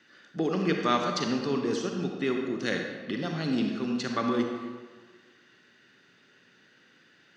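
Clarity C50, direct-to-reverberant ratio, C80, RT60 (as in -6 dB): 3.0 dB, 2.0 dB, 4.5 dB, 1.4 s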